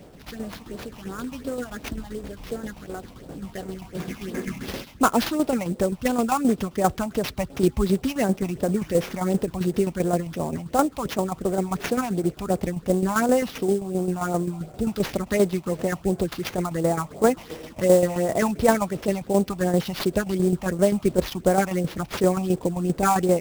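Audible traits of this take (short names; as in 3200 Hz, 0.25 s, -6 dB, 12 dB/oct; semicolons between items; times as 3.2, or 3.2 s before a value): tremolo saw down 7.6 Hz, depth 60%; phasing stages 6, 2.8 Hz, lowest notch 410–3400 Hz; aliases and images of a low sample rate 8400 Hz, jitter 20%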